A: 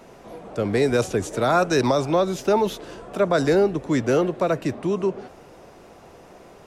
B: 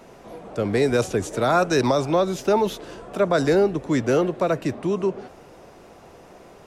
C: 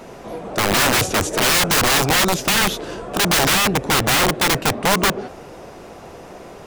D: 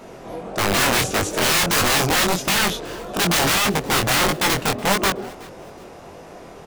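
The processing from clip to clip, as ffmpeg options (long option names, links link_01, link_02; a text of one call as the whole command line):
ffmpeg -i in.wav -af anull out.wav
ffmpeg -i in.wav -af "aeval=exprs='(mod(9.44*val(0)+1,2)-1)/9.44':channel_layout=same,volume=8.5dB" out.wav
ffmpeg -i in.wav -af "flanger=delay=19.5:depth=6.1:speed=1.6,aecho=1:1:371|742:0.0708|0.0227,volume=1dB" out.wav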